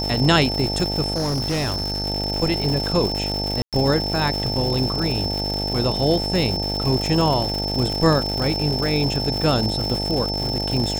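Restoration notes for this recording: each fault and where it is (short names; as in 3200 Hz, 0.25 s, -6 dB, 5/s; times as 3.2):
buzz 50 Hz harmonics 18 -27 dBFS
crackle 270/s -24 dBFS
tone 5300 Hz -25 dBFS
1.14–2.06 clipped -19.5 dBFS
3.62–3.73 gap 0.107 s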